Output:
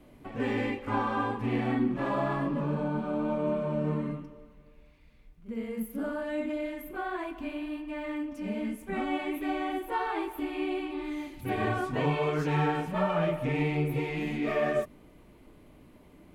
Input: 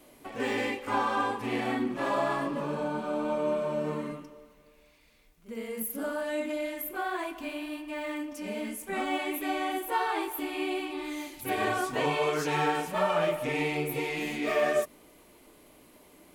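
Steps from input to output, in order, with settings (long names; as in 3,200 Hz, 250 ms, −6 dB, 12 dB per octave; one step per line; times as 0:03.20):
bass and treble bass +13 dB, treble −11 dB
level −2.5 dB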